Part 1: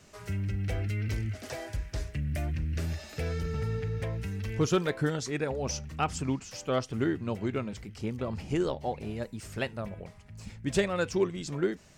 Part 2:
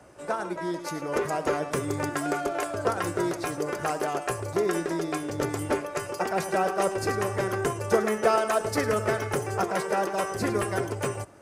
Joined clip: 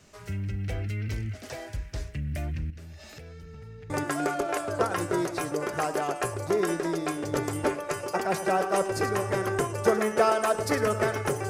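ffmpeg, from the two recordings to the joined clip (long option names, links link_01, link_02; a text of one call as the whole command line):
ffmpeg -i cue0.wav -i cue1.wav -filter_complex "[0:a]asettb=1/sr,asplit=3[link_01][link_02][link_03];[link_01]atrim=end=2.704[link_04];[link_02]atrim=start=2.7:end=3.9,asetpts=PTS-STARTPTS,afade=type=in:duration=0.004:curve=qsin,afade=type=out:start_time=1.196:duration=0.004:curve=qsin,acompressor=threshold=-41dB:ratio=8:attack=3.2:release=140:knee=1:detection=peak[link_05];[link_03]atrim=start=3.896[link_06];[link_04][link_05]acrossfade=duration=0.004:curve1=hsin:curve2=qsin[link_07];[link_07][link_06]acrossfade=duration=0.004:curve1=qsin:curve2=hsin,apad=whole_dur=11.49,atrim=end=11.49,atrim=end=3.902[link_08];[1:a]atrim=start=1.958:end=9.55[link_09];[link_08][link_09]acrossfade=duration=0.004:curve1=hsin:curve2=hsin" out.wav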